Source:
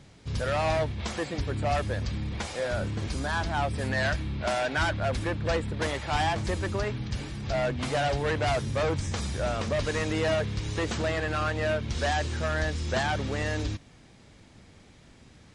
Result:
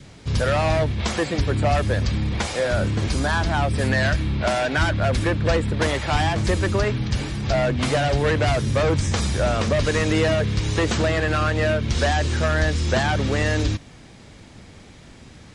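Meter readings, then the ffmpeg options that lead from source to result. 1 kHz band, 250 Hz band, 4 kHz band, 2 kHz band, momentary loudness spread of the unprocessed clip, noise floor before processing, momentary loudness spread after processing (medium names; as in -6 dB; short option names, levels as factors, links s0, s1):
+5.0 dB, +8.5 dB, +7.0 dB, +6.5 dB, 5 LU, -54 dBFS, 3 LU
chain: -filter_complex "[0:a]acrossover=split=370[s0][s1];[s1]acompressor=threshold=0.0398:ratio=6[s2];[s0][s2]amix=inputs=2:normalize=0,adynamicequalizer=threshold=0.00562:dfrequency=840:dqfactor=2.7:tfrequency=840:tqfactor=2.7:attack=5:release=100:ratio=0.375:range=2:mode=cutabove:tftype=bell,volume=2.82"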